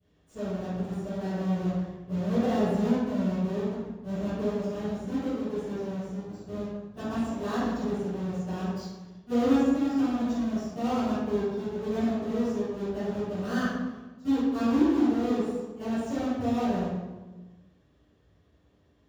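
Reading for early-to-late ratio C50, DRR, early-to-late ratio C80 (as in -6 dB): -4.0 dB, -23.0 dB, -0.5 dB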